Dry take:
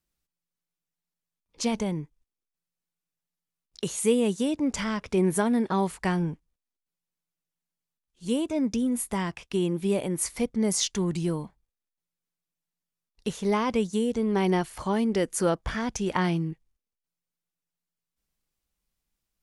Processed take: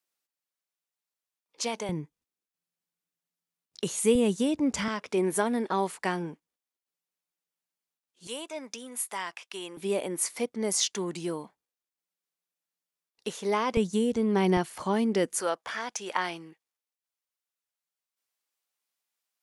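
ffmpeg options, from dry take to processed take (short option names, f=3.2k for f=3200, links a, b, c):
-af "asetnsamples=n=441:p=0,asendcmd='1.89 highpass f 150;4.15 highpass f 71;4.88 highpass f 300;8.27 highpass f 800;9.77 highpass f 330;13.77 highpass f 80;14.57 highpass f 170;15.4 highpass f 620',highpass=450"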